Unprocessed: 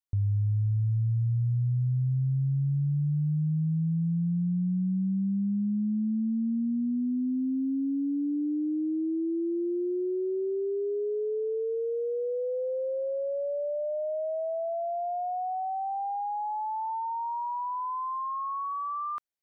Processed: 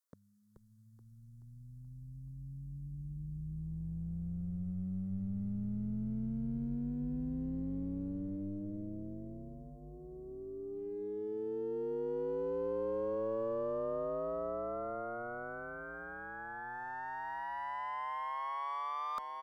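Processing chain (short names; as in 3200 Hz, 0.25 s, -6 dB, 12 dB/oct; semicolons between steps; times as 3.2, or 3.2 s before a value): tracing distortion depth 0.37 ms; HPF 370 Hz 12 dB/oct; reverse; compressor 5:1, threshold -42 dBFS, peak gain reduction 10.5 dB; reverse; fixed phaser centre 520 Hz, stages 8; in parallel at -8 dB: one-sided clip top -45 dBFS; on the sum: frequency-shifting echo 0.429 s, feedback 60%, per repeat -84 Hz, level -5.5 dB; gain +2.5 dB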